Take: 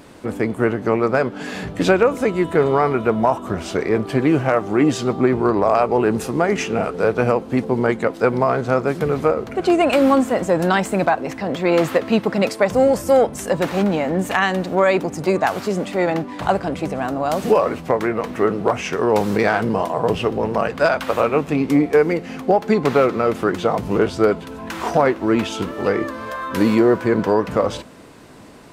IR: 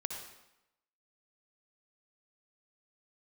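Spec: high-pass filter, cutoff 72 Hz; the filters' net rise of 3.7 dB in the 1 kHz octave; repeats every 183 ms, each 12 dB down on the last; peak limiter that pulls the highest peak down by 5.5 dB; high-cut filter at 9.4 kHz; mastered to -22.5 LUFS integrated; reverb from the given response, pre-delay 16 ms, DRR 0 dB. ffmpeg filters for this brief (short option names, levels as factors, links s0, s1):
-filter_complex "[0:a]highpass=72,lowpass=9400,equalizer=f=1000:t=o:g=5,alimiter=limit=0.501:level=0:latency=1,aecho=1:1:183|366|549:0.251|0.0628|0.0157,asplit=2[s0][s1];[1:a]atrim=start_sample=2205,adelay=16[s2];[s1][s2]afir=irnorm=-1:irlink=0,volume=0.891[s3];[s0][s3]amix=inputs=2:normalize=0,volume=0.473"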